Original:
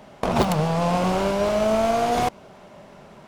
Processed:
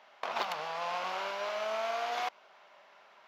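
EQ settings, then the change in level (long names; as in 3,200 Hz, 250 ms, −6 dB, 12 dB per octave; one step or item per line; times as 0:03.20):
moving average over 5 samples
high-pass filter 1,100 Hz 12 dB per octave
−4.5 dB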